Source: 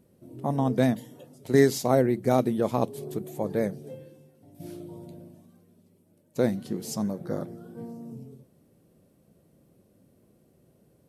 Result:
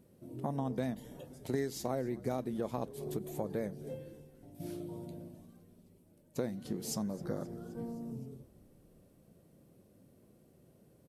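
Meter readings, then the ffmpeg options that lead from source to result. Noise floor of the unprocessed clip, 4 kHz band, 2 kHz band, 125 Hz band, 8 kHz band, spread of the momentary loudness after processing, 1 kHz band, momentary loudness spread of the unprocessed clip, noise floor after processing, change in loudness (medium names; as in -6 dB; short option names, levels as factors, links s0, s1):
-64 dBFS, -9.0 dB, -14.0 dB, -10.0 dB, -7.0 dB, 14 LU, -11.5 dB, 21 LU, -65 dBFS, -13.0 dB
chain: -filter_complex "[0:a]acompressor=threshold=0.0251:ratio=4,asplit=2[s0][s1];[s1]asplit=5[s2][s3][s4][s5][s6];[s2]adelay=262,afreqshift=-64,volume=0.0794[s7];[s3]adelay=524,afreqshift=-128,volume=0.0501[s8];[s4]adelay=786,afreqshift=-192,volume=0.0316[s9];[s5]adelay=1048,afreqshift=-256,volume=0.02[s10];[s6]adelay=1310,afreqshift=-320,volume=0.0124[s11];[s7][s8][s9][s10][s11]amix=inputs=5:normalize=0[s12];[s0][s12]amix=inputs=2:normalize=0,volume=0.841"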